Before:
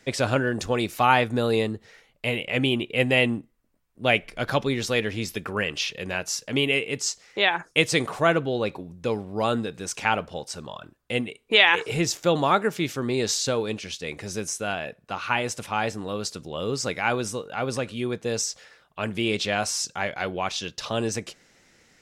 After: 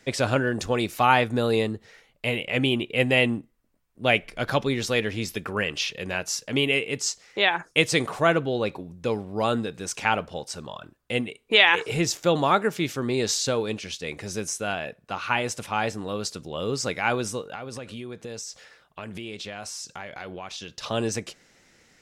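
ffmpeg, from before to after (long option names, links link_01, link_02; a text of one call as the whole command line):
ffmpeg -i in.wav -filter_complex "[0:a]asettb=1/sr,asplit=3[link_01][link_02][link_03];[link_01]atrim=end=17.554[link_04];[link_02]atrim=start=17.55:end=20.83,asetpts=PTS-STARTPTS,afade=type=in:duration=0.004:curve=qsin,afade=type=out:start_time=3.276:duration=0.004:curve=qsin,acompressor=threshold=-33dB:ratio=6:attack=3.2:release=140:knee=1:detection=peak[link_05];[link_03]atrim=start=20.826[link_06];[link_04][link_05]acrossfade=duration=0.004:curve1=hsin:curve2=qsin[link_07];[link_07][link_06]acrossfade=duration=0.004:curve1=qsin:curve2=hsin" out.wav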